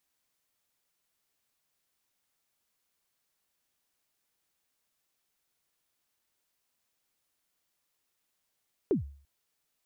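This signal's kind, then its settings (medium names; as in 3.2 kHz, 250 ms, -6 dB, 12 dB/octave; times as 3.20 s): kick drum length 0.34 s, from 450 Hz, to 70 Hz, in 124 ms, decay 0.47 s, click off, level -20 dB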